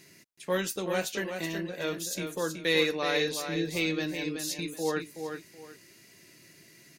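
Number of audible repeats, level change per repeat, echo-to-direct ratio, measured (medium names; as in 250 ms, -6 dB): 2, -11.5 dB, -6.5 dB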